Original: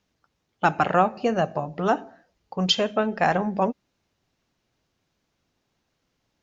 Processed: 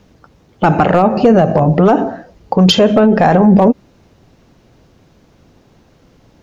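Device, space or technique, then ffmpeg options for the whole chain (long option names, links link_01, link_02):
mastering chain: -af "equalizer=frequency=490:width_type=o:width=0.28:gain=2,acompressor=threshold=-21dB:ratio=3,asoftclip=type=tanh:threshold=-13dB,tiltshelf=frequency=970:gain=6,asoftclip=type=hard:threshold=-14dB,alimiter=level_in=23.5dB:limit=-1dB:release=50:level=0:latency=1,volume=-1dB"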